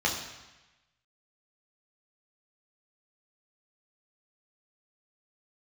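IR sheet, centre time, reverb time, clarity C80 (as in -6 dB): 36 ms, 1.1 s, 8.0 dB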